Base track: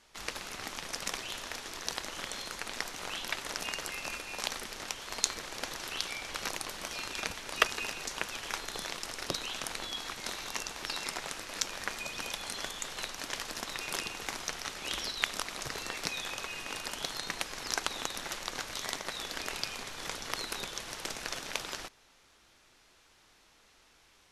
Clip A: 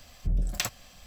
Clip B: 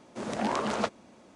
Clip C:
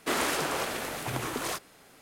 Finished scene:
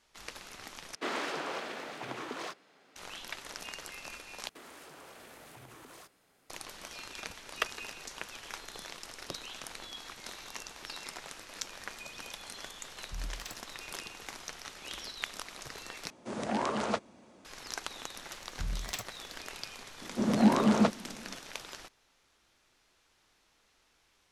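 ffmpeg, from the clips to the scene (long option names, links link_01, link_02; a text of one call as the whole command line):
ffmpeg -i bed.wav -i cue0.wav -i cue1.wav -i cue2.wav -filter_complex "[3:a]asplit=2[link_01][link_02];[1:a]asplit=2[link_03][link_04];[2:a]asplit=2[link_05][link_06];[0:a]volume=-6.5dB[link_07];[link_01]acrossover=split=170 6000:gain=0.1 1 0.112[link_08][link_09][link_10];[link_08][link_09][link_10]amix=inputs=3:normalize=0[link_11];[link_02]acompressor=threshold=-35dB:ratio=6:attack=3.2:release=140:knee=1:detection=peak[link_12];[link_03]asubboost=boost=9:cutoff=61[link_13];[link_06]equalizer=frequency=200:width_type=o:width=1.4:gain=12[link_14];[link_07]asplit=4[link_15][link_16][link_17][link_18];[link_15]atrim=end=0.954[link_19];[link_11]atrim=end=2.01,asetpts=PTS-STARTPTS,volume=-6dB[link_20];[link_16]atrim=start=2.956:end=4.494[link_21];[link_12]atrim=end=2.01,asetpts=PTS-STARTPTS,volume=-13dB[link_22];[link_17]atrim=start=6.496:end=16.104[link_23];[link_05]atrim=end=1.35,asetpts=PTS-STARTPTS,volume=-2.5dB[link_24];[link_18]atrim=start=17.446[link_25];[link_13]atrim=end=1.06,asetpts=PTS-STARTPTS,volume=-16dB,afade=type=in:duration=0.004:curve=hsin,afade=type=out:start_time=1.056:duration=0.004:curve=hsin,adelay=12860[link_26];[link_04]atrim=end=1.06,asetpts=PTS-STARTPTS,volume=-9dB,afade=type=in:duration=0.004:curve=hsin,afade=type=out:start_time=1.056:duration=0.004:curve=hsin,adelay=18340[link_27];[link_14]atrim=end=1.35,asetpts=PTS-STARTPTS,volume=-1dB,afade=type=in:duration=0.004:curve=hsin,afade=type=out:start_time=1.346:duration=0.004:curve=hsin,adelay=20010[link_28];[link_19][link_20]acrossfade=duration=0.004:curve1=hsin:curve2=hsin[link_29];[link_29][link_21]acrossfade=duration=0.004:curve1=hsin:curve2=hsin[link_30];[link_30][link_22]acrossfade=duration=0.004:curve1=hsin:curve2=hsin[link_31];[link_31][link_23]acrossfade=duration=0.004:curve1=hsin:curve2=hsin[link_32];[link_32][link_24]acrossfade=duration=0.004:curve1=hsin:curve2=hsin[link_33];[link_33][link_25]acrossfade=duration=0.004:curve1=hsin:curve2=hsin[link_34];[link_34][link_26][link_27][link_28]amix=inputs=4:normalize=0" out.wav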